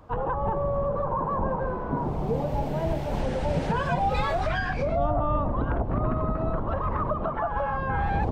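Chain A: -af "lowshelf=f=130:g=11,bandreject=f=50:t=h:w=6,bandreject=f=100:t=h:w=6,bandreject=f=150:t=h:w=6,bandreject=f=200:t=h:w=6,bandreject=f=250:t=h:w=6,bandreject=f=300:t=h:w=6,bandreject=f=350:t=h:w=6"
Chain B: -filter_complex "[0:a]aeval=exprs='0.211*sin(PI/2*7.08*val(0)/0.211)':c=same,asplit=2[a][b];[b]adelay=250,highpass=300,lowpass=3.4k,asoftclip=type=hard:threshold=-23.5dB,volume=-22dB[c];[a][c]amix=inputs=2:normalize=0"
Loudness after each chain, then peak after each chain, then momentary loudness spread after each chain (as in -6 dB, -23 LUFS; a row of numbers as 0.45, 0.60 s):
-24.5, -16.0 LUFS; -8.0, -13.5 dBFS; 4, 2 LU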